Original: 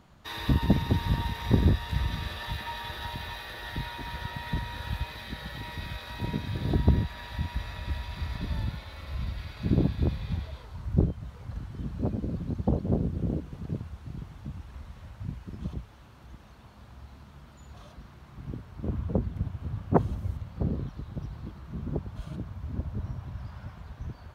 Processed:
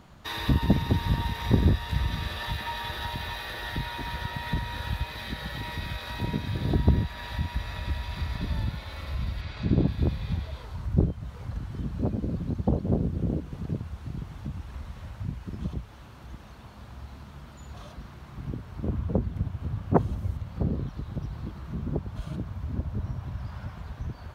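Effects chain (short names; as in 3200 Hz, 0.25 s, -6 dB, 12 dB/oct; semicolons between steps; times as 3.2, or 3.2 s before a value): 9.41–9.88 LPF 6500 Hz 12 dB/oct; in parallel at -2 dB: compressor, threshold -38 dBFS, peak gain reduction 21 dB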